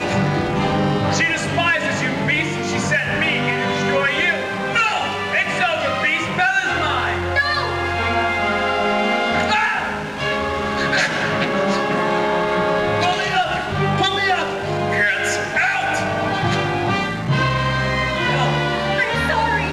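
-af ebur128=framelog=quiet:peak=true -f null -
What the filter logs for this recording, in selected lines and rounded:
Integrated loudness:
  I:         -18.6 LUFS
  Threshold: -28.5 LUFS
Loudness range:
  LRA:         0.9 LU
  Threshold: -38.6 LUFS
  LRA low:   -19.0 LUFS
  LRA high:  -18.1 LUFS
True peak:
  Peak:       -7.4 dBFS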